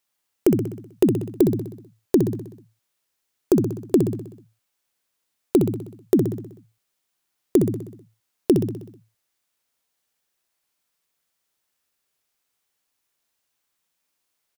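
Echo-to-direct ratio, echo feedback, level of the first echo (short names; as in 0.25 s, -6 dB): -5.0 dB, 56%, -6.5 dB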